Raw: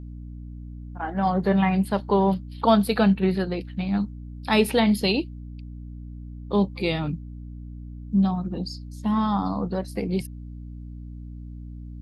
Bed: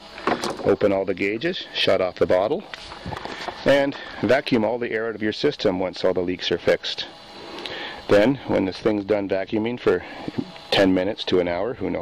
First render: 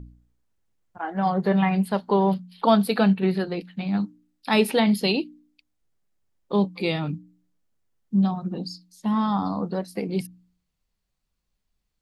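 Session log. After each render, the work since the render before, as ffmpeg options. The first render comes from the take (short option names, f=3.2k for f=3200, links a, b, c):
-af "bandreject=f=60:t=h:w=4,bandreject=f=120:t=h:w=4,bandreject=f=180:t=h:w=4,bandreject=f=240:t=h:w=4,bandreject=f=300:t=h:w=4"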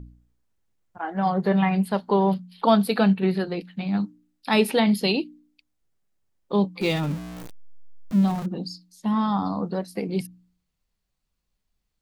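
-filter_complex "[0:a]asettb=1/sr,asplit=3[a][b][c];[a]atrim=end=6.814[d];[b]atrim=start=6.81:end=8.46,asetpts=PTS-STARTPTS,afade=t=in:d=0.004:c=qsin,afade=t=out:st=1.646:d=0.004:c=qsin,aeval=exprs='val(0)+0.5*0.0266*sgn(val(0))':c=same[e];[c]atrim=start=8.456[f];[d][e]acrossfade=d=0.004:c1=hsin:c2=qsin[g];[g][f]acrossfade=d=0.004:c1=qsin:c2=hsin"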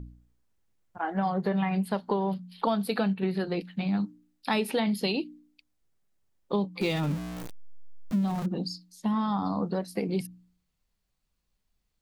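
-af "acompressor=threshold=-24dB:ratio=6"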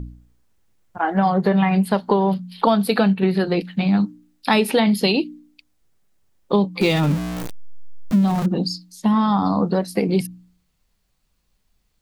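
-af "volume=10dB"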